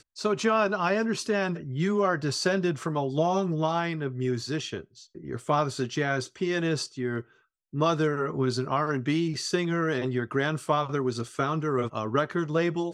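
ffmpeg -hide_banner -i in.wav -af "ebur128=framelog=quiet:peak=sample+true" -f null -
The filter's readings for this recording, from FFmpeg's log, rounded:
Integrated loudness:
  I:         -27.6 LUFS
  Threshold: -37.8 LUFS
Loudness range:
  LRA:         2.9 LU
  Threshold: -48.1 LUFS
  LRA low:   -29.7 LUFS
  LRA high:  -26.7 LUFS
Sample peak:
  Peak:      -10.4 dBFS
True peak:
  Peak:      -10.4 dBFS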